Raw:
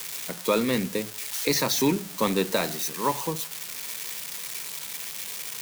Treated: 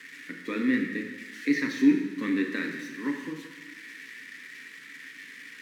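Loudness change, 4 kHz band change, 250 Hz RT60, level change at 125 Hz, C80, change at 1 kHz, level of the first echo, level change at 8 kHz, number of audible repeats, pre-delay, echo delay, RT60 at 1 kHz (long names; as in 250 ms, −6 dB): −1.0 dB, −13.5 dB, 1.3 s, −10.5 dB, 7.0 dB, −15.0 dB, no echo audible, below −20 dB, no echo audible, 3 ms, no echo audible, 1.2 s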